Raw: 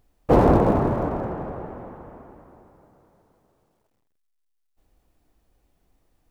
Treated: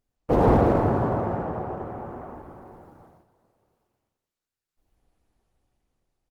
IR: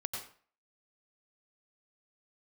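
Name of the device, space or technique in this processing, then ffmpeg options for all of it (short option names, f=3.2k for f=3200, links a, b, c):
speakerphone in a meeting room: -filter_complex "[0:a]asettb=1/sr,asplit=3[a][b][c];[a]atrim=end=0.774[d];[b]atrim=start=0.77:end=2.18,asetpts=PTS-STARTPTS,afade=t=in:d=0.004:c=qsin,afade=t=out:st=1.406:d=0.004:c=qsin,highpass=54[e];[c]atrim=start=2.176[f];[d][e]acrossfade=d=0.004:c1=hsin:c2=qsin[g];[g][f]acrossfade=d=0.004:c1=qsin:c2=hsin[h];[1:a]atrim=start_sample=2205[i];[h][i]afir=irnorm=-1:irlink=0,asplit=2[j][k];[k]adelay=90,highpass=300,lowpass=3.4k,asoftclip=type=hard:threshold=-13dB,volume=-6dB[l];[j][l]amix=inputs=2:normalize=0,dynaudnorm=f=220:g=9:m=8.5dB,agate=range=-10dB:threshold=-47dB:ratio=16:detection=peak,volume=-3.5dB" -ar 48000 -c:a libopus -b:a 20k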